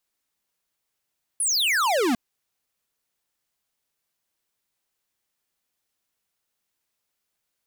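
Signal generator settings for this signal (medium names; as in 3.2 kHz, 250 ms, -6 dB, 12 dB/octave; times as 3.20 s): laser zap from 11 kHz, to 220 Hz, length 0.75 s square, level -21.5 dB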